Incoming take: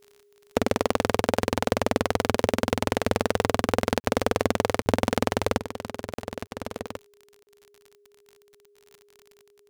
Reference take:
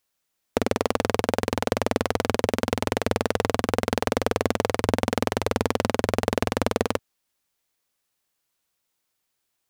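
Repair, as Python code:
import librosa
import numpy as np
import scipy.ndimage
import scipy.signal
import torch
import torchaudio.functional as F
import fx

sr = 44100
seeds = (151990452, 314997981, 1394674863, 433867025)

y = fx.fix_declick_ar(x, sr, threshold=6.5)
y = fx.notch(y, sr, hz=410.0, q=30.0)
y = fx.fix_interpolate(y, sr, at_s=(4.0, 4.82, 6.14, 6.47, 7.43), length_ms=40.0)
y = fx.fix_level(y, sr, at_s=5.58, step_db=11.0)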